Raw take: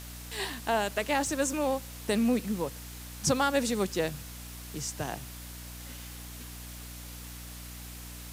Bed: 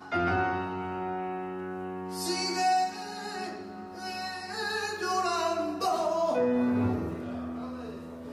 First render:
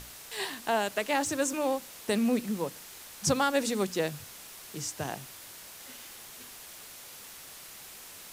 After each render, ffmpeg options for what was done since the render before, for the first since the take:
-af "bandreject=f=60:t=h:w=6,bandreject=f=120:t=h:w=6,bandreject=f=180:t=h:w=6,bandreject=f=240:t=h:w=6,bandreject=f=300:t=h:w=6"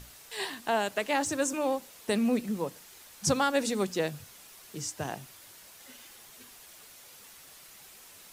-af "afftdn=nr=6:nf=-48"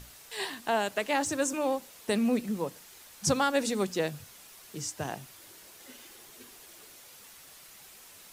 -filter_complex "[0:a]asettb=1/sr,asplit=3[a][b][c];[a]atrim=end=5.384[d];[b]atrim=start=5.38:end=7,asetpts=PTS-STARTPTS,afade=t=in:d=0.004:c=qsin,afade=t=out:st=1.616:d=0.004:c=qsin,equalizer=f=360:t=o:w=0.77:g=8[e];[c]atrim=start=6.996[f];[d][e]acrossfade=d=0.004:c1=hsin:c2=qsin[g];[g][f]acrossfade=d=0.004:c1=qsin:c2=hsin"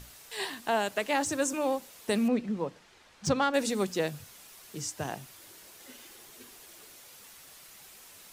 -filter_complex "[0:a]asettb=1/sr,asplit=3[a][b][c];[a]atrim=end=2.284[d];[b]atrim=start=2.28:end=3.54,asetpts=PTS-STARTPTS,afade=t=in:d=0.004:c=qsin,afade=t=out:st=1.256:d=0.004:c=qsin,adynamicsmooth=sensitivity=1.5:basefreq=4.1k[e];[c]atrim=start=3.536[f];[d][e]acrossfade=d=0.004:c1=hsin:c2=qsin[g];[g][f]acrossfade=d=0.004:c1=qsin:c2=hsin"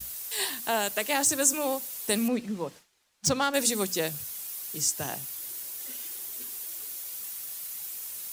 -af "aemphasis=mode=production:type=75fm,agate=range=-33dB:threshold=-42dB:ratio=3:detection=peak"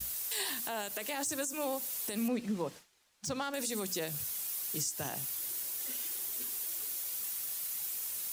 -af "acompressor=threshold=-29dB:ratio=4,alimiter=level_in=0.5dB:limit=-24dB:level=0:latency=1:release=38,volume=-0.5dB"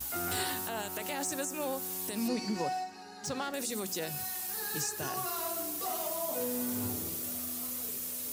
-filter_complex "[1:a]volume=-10dB[a];[0:a][a]amix=inputs=2:normalize=0"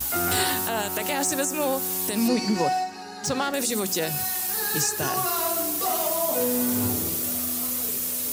-af "volume=10dB"

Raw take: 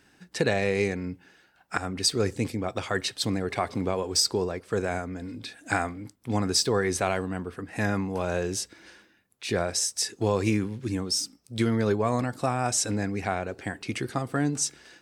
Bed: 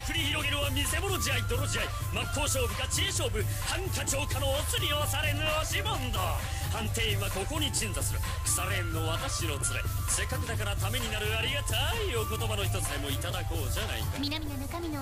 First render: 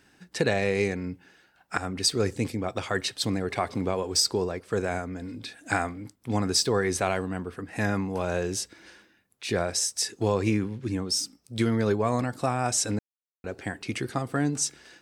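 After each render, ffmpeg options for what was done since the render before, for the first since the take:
-filter_complex "[0:a]asettb=1/sr,asplit=3[a][b][c];[a]atrim=end=10.344[d];[b]atrim=start=10.34:end=11.09,asetpts=PTS-STARTPTS,afade=t=in:d=0.004:c=qsin,afade=t=out:st=0.746:d=0.004:c=qsin,highshelf=f=5.2k:g=-7[e];[c]atrim=start=11.086[f];[d][e]acrossfade=d=0.004:c1=hsin:c2=qsin[g];[g][f]acrossfade=d=0.004:c1=qsin:c2=hsin,asplit=3[h][i][j];[h]atrim=end=12.99,asetpts=PTS-STARTPTS,afade=t=out:st=12.986:d=0.004:c=hsin[k];[i]atrim=start=12.99:end=13.44,asetpts=PTS-STARTPTS,volume=0[l];[j]atrim=start=13.44,asetpts=PTS-STARTPTS,afade=t=in:d=0.004:c=hsin[m];[k][l][m]concat=n=3:v=0:a=1"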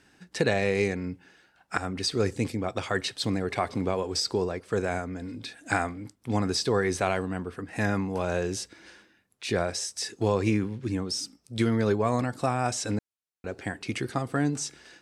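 -filter_complex "[0:a]lowpass=12k,acrossover=split=4600[a][b];[b]acompressor=threshold=-33dB:ratio=4:attack=1:release=60[c];[a][c]amix=inputs=2:normalize=0"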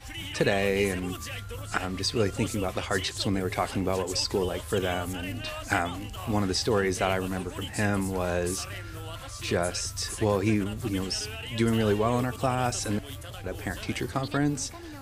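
-filter_complex "[1:a]volume=-8dB[a];[0:a][a]amix=inputs=2:normalize=0"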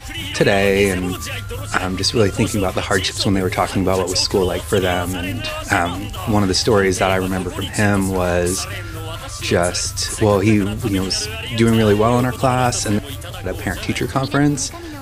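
-af "volume=10.5dB,alimiter=limit=-1dB:level=0:latency=1"

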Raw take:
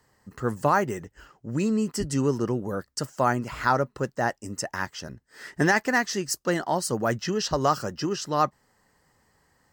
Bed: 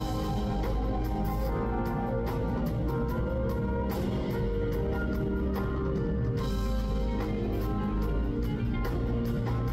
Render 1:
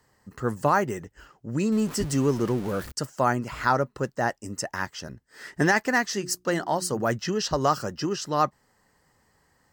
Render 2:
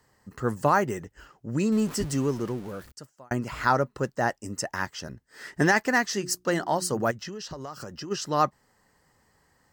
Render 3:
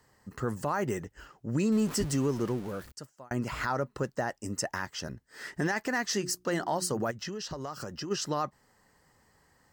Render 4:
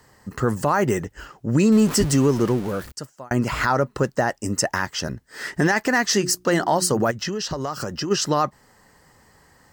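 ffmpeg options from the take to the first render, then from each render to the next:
-filter_complex "[0:a]asettb=1/sr,asplit=3[a][b][c];[a]atrim=end=1.724[d];[b]atrim=start=1.72:end=2.92,asetpts=PTS-STARTPTS,afade=t=in:d=0.004:c=qsin,afade=t=out:st=1.196:d=0.004:c=qsin,aeval=exprs='val(0)+0.5*0.02*sgn(val(0))':c=same[e];[c]atrim=start=2.916[f];[d][e]acrossfade=d=0.004:c1=hsin:c2=qsin[g];[g][f]acrossfade=d=0.004:c1=qsin:c2=hsin,asettb=1/sr,asplit=3[h][i][j];[h]atrim=end=6.124[k];[i]atrim=start=6.12:end=7.01,asetpts=PTS-STARTPTS,afade=t=in:d=0.004:c=qsin,afade=t=out:st=0.886:d=0.004:c=qsin,bandreject=f=60:t=h:w=6,bandreject=f=120:t=h:w=6,bandreject=f=180:t=h:w=6,bandreject=f=240:t=h:w=6,bandreject=f=300:t=h:w=6,bandreject=f=360:t=h:w=6[l];[j]atrim=start=7.006[m];[k][l]acrossfade=d=0.004:c1=hsin:c2=qsin[n];[n][m]acrossfade=d=0.004:c1=qsin:c2=hsin"
-filter_complex "[0:a]asplit=3[a][b][c];[a]afade=t=out:st=7.1:d=0.02[d];[b]acompressor=threshold=-34dB:ratio=8:attack=3.2:release=140:knee=1:detection=peak,afade=t=in:st=7.1:d=0.02,afade=t=out:st=8.1:d=0.02[e];[c]afade=t=in:st=8.1:d=0.02[f];[d][e][f]amix=inputs=3:normalize=0,asplit=2[g][h];[g]atrim=end=3.31,asetpts=PTS-STARTPTS,afade=t=out:st=1.78:d=1.53[i];[h]atrim=start=3.31,asetpts=PTS-STARTPTS,afade=t=in:d=0.004:c=hsin[j];[i][j]concat=n=2:v=0:a=1"
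-af "alimiter=limit=-20dB:level=0:latency=1:release=101"
-af "volume=10.5dB"

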